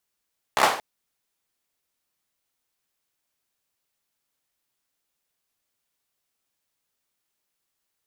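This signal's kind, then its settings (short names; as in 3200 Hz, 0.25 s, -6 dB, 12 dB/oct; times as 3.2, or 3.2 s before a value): hand clap length 0.23 s, bursts 5, apart 15 ms, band 810 Hz, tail 0.45 s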